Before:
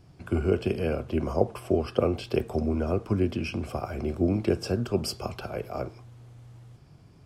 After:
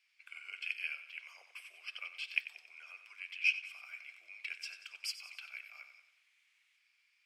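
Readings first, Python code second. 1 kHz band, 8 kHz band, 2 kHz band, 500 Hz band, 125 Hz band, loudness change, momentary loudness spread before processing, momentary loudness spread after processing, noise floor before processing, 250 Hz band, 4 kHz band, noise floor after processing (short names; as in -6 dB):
-25.5 dB, -8.0 dB, +4.5 dB, under -40 dB, under -40 dB, -11.0 dB, 9 LU, 19 LU, -54 dBFS, under -40 dB, -3.5 dB, -75 dBFS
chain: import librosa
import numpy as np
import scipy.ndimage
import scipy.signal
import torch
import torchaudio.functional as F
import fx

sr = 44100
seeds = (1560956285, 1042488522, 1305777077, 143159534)

y = fx.ladder_highpass(x, sr, hz=2100.0, resonance_pct=70)
y = fx.high_shelf(y, sr, hz=7100.0, db=-6.0)
y = fx.echo_feedback(y, sr, ms=92, feedback_pct=52, wet_db=-9.5)
y = fx.upward_expand(y, sr, threshold_db=-51.0, expansion=1.5)
y = y * 10.0 ** (10.0 / 20.0)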